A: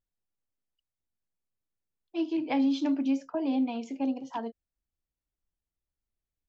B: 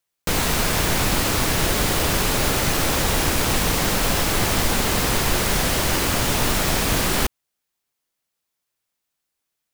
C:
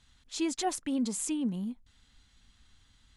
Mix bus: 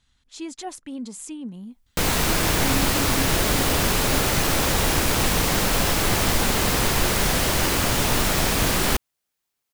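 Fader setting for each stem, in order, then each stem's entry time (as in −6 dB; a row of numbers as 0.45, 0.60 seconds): −5.5, −0.5, −3.0 decibels; 0.10, 1.70, 0.00 seconds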